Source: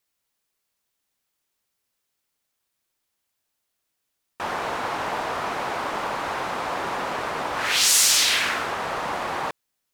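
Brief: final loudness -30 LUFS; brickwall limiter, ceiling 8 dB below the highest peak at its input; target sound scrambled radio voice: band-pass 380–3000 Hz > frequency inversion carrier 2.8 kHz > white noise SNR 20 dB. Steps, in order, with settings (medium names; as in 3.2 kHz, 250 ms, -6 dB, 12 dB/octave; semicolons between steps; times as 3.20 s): peak limiter -12.5 dBFS; band-pass 380–3000 Hz; frequency inversion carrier 2.8 kHz; white noise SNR 20 dB; trim -2.5 dB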